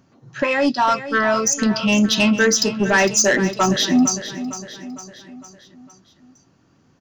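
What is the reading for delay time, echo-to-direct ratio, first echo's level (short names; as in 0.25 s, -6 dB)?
0.456 s, -11.0 dB, -12.5 dB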